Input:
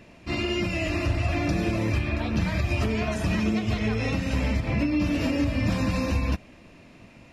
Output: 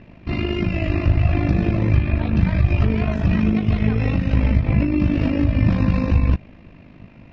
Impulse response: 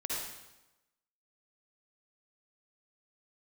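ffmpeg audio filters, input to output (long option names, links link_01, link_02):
-af "lowpass=frequency=5700:width=0.5412,lowpass=frequency=5700:width=1.3066,tremolo=f=51:d=0.667,bass=frequency=250:gain=8,treble=frequency=4000:gain=-12,volume=4.5dB"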